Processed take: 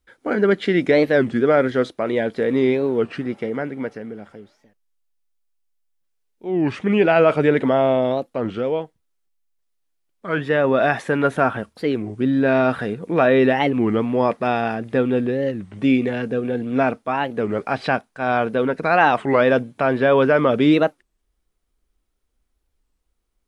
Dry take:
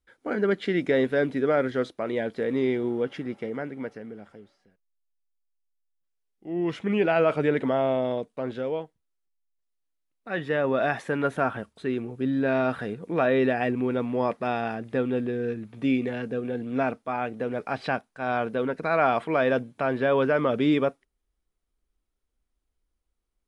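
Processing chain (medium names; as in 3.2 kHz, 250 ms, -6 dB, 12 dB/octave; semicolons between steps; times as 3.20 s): warped record 33 1/3 rpm, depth 250 cents; trim +7 dB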